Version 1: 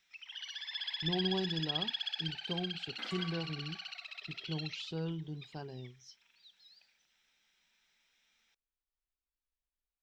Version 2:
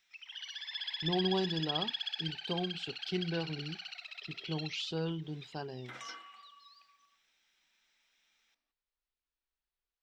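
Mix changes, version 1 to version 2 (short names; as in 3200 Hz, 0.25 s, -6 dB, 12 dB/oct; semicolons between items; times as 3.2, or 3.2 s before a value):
speech +6.0 dB; second sound: entry +2.90 s; master: add low shelf 220 Hz -8.5 dB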